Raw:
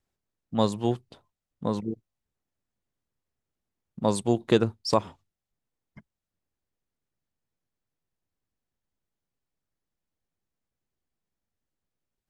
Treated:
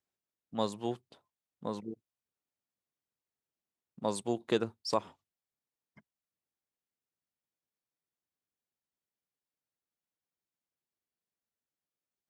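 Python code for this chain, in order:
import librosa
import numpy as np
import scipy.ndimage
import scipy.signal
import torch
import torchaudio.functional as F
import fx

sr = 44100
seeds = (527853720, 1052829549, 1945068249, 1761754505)

y = fx.highpass(x, sr, hz=280.0, slope=6)
y = y * 10.0 ** (-6.5 / 20.0)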